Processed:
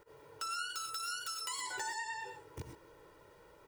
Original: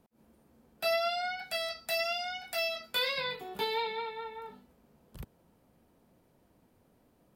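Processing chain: high shelf 12000 Hz +8 dB; comb 4.2 ms, depth 71%; compressor 5:1, threshold -43 dBFS, peak gain reduction 17.5 dB; non-linear reverb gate 0.28 s rising, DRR 5 dB; speed mistake 7.5 ips tape played at 15 ips; gain +3.5 dB

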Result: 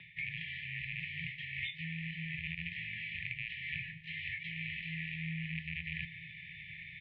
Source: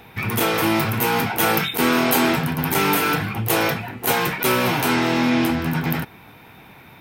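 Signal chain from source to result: rattling part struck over -23 dBFS, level -13 dBFS; treble ducked by the level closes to 2500 Hz, closed at -14 dBFS; reverse; compressor 10:1, threshold -34 dBFS, peak gain reduction 19.5 dB; reverse; brick-wall FIR band-stop 260–1800 Hz; on a send: echo 0.817 s -18 dB; on the sum: mistuned SSB -85 Hz 250–3300 Hz; doubler 24 ms -13 dB; gain +2.5 dB

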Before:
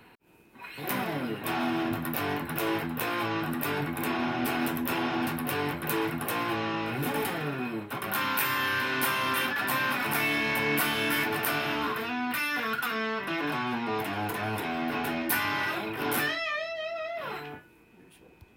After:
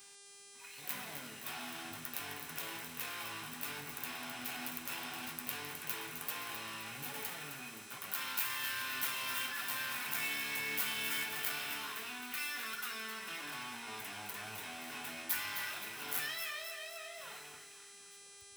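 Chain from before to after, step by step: median filter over 5 samples; bell 360 Hz -10 dB 0.34 oct; buzz 400 Hz, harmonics 25, -49 dBFS -4 dB/oct; pre-emphasis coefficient 0.9; on a send: split-band echo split 1000 Hz, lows 0.1 s, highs 0.261 s, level -8.5 dB

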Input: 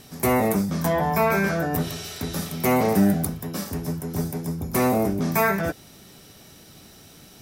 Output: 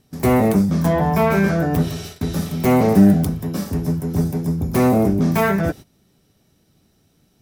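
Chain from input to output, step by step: self-modulated delay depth 0.061 ms; low shelf 480 Hz +9 dB; gate -32 dBFS, range -17 dB

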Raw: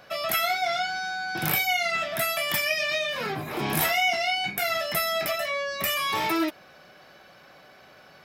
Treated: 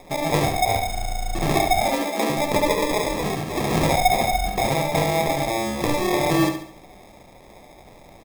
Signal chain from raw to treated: sample-and-hold 30×; 1.81–2.3 steep high-pass 190 Hz 96 dB/oct; on a send: feedback echo 70 ms, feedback 42%, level -8 dB; on the sum: gain +4.5 dB

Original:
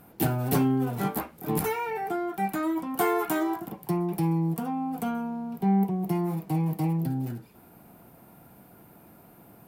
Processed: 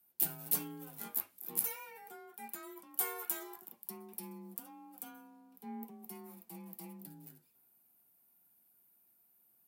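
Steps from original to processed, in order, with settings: frequency shift +30 Hz; pre-emphasis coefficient 0.9; three-band expander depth 40%; gain -4.5 dB

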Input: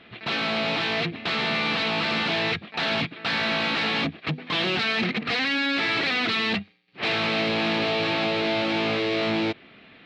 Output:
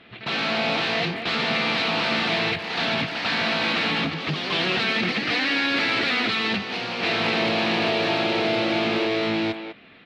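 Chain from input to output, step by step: added harmonics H 4 -38 dB, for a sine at -14.5 dBFS; echoes that change speed 85 ms, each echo +1 st, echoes 3, each echo -6 dB; speakerphone echo 0.2 s, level -8 dB

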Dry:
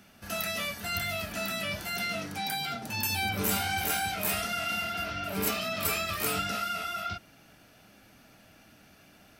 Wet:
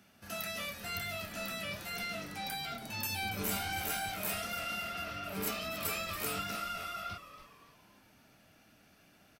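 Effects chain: HPF 61 Hz; frequency-shifting echo 0.282 s, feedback 41%, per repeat -120 Hz, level -13 dB; gain -6.5 dB

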